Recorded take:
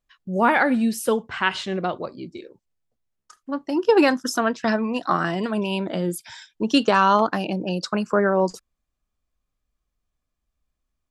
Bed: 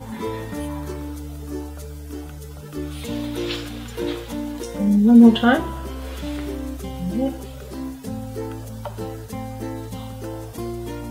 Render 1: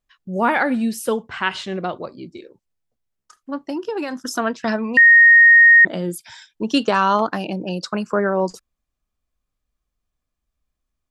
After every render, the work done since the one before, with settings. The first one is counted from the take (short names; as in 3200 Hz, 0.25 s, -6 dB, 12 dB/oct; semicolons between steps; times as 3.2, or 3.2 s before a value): 3.71–4.34 compressor, threshold -22 dBFS; 4.97–5.85 bleep 1860 Hz -6 dBFS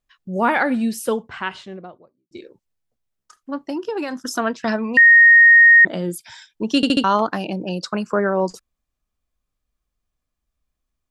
0.98–2.31 studio fade out; 6.76 stutter in place 0.07 s, 4 plays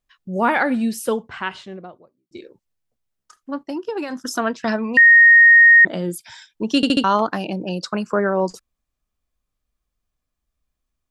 3.63–4.1 upward expander, over -38 dBFS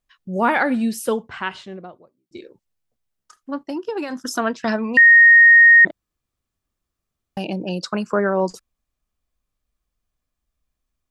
5.91–7.37 room tone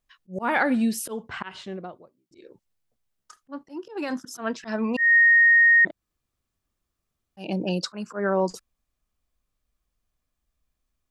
auto swell 0.196 s; compressor 2:1, threshold -20 dBFS, peak gain reduction 6.5 dB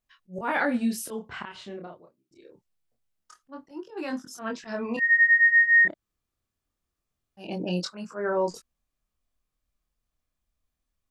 chorus 0.25 Hz, depth 7.3 ms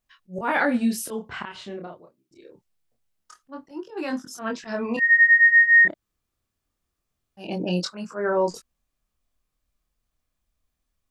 gain +3.5 dB